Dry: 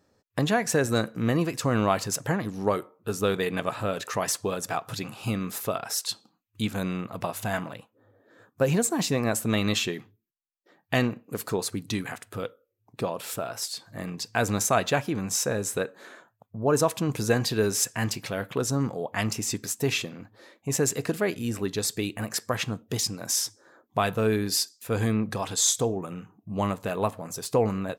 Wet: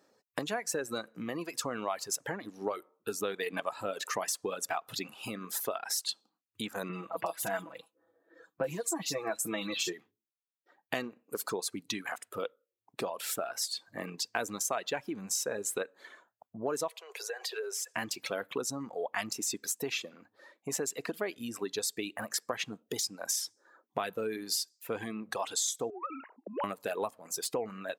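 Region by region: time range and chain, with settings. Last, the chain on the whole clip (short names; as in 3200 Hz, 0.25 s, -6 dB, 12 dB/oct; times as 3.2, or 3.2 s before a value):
6.89–9.93 comb 6.1 ms, depth 81% + bands offset in time lows, highs 40 ms, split 3100 Hz
16.88–17.94 steep high-pass 390 Hz 96 dB/oct + high shelf 4600 Hz -5 dB + compressor, threshold -33 dBFS
25.9–26.64 sine-wave speech + compressor 5:1, threshold -44 dBFS + overdrive pedal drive 21 dB, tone 1900 Hz, clips at -19 dBFS
whole clip: reverb removal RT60 2 s; compressor, threshold -31 dBFS; HPF 290 Hz 12 dB/oct; gain +1.5 dB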